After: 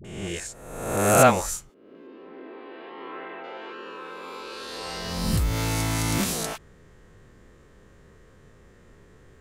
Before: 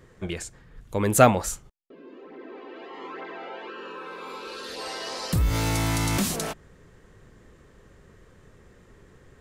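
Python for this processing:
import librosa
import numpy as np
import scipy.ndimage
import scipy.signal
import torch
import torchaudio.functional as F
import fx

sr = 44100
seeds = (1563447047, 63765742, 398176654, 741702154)

y = fx.spec_swells(x, sr, rise_s=1.03)
y = fx.lowpass(y, sr, hz=fx.line((2.02, 5600.0), (3.38, 3200.0)), slope=24, at=(2.02, 3.38), fade=0.02)
y = fx.dispersion(y, sr, late='highs', ms=47.0, hz=580.0)
y = y * 10.0 ** (-2.5 / 20.0)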